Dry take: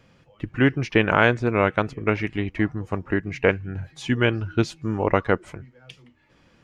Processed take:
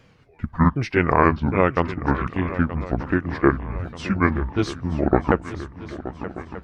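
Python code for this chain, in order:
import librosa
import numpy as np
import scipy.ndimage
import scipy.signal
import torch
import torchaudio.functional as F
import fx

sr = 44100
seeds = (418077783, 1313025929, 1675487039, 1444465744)

y = fx.pitch_ramps(x, sr, semitones=-9.5, every_ms=759)
y = fx.echo_swing(y, sr, ms=1234, ratio=3, feedback_pct=47, wet_db=-14)
y = y * 10.0 ** (2.5 / 20.0)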